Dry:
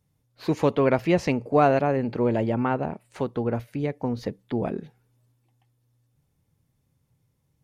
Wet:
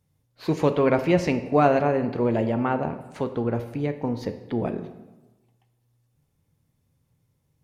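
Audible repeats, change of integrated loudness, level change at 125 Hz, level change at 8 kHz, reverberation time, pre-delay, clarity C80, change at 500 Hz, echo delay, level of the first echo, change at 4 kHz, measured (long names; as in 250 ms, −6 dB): no echo audible, +0.5 dB, +0.5 dB, can't be measured, 1.1 s, 10 ms, 13.0 dB, +0.5 dB, no echo audible, no echo audible, +0.5 dB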